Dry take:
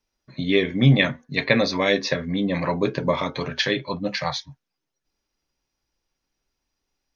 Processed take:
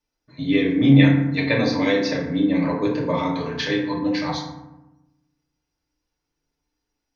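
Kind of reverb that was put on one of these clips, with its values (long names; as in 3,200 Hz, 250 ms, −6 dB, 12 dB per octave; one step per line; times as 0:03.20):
feedback delay network reverb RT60 0.96 s, low-frequency decay 1.4×, high-frequency decay 0.45×, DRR −3.5 dB
level −6 dB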